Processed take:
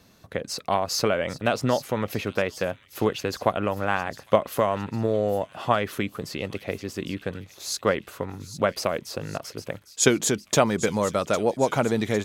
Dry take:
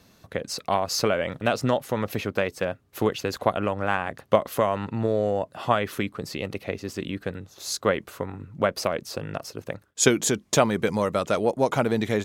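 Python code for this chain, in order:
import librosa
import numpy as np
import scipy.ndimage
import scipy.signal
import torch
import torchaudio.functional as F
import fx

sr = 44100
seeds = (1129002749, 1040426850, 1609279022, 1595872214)

y = fx.echo_wet_highpass(x, sr, ms=805, feedback_pct=54, hz=3400.0, wet_db=-11.5)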